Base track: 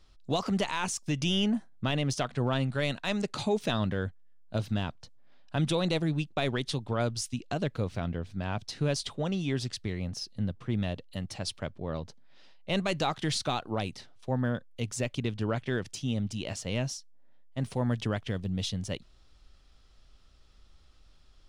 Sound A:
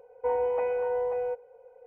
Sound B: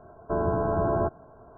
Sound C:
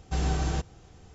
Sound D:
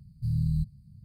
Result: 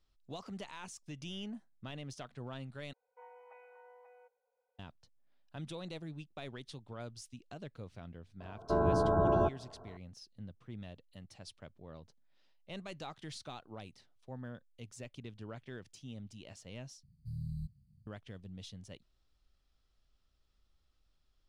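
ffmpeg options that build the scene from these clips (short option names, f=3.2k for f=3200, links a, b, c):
-filter_complex "[0:a]volume=-16dB[a];[1:a]highpass=1.1k[b];[a]asplit=3[c][d][e];[c]atrim=end=2.934[f];[b]atrim=end=1.86,asetpts=PTS-STARTPTS,volume=-17.5dB[g];[d]atrim=start=4.786:end=17.034[h];[4:a]atrim=end=1.04,asetpts=PTS-STARTPTS,volume=-13.5dB[i];[e]atrim=start=18.066[j];[2:a]atrim=end=1.57,asetpts=PTS-STARTPTS,volume=-3dB,afade=t=in:d=0.004:c=hsin,afade=t=out:st=1.566:d=0.004:c=hsin,adelay=8400[k];[f][g]acrossfade=d=0.004:c1=hsin:c2=hsin[l];[l][h]acrossfade=d=0.004:c1=hsin:c2=hsin[m];[m][i]acrossfade=d=0.004:c1=hsin:c2=hsin[n];[n][j]acrossfade=d=0.004:c1=hsin:c2=hsin[o];[o][k]amix=inputs=2:normalize=0"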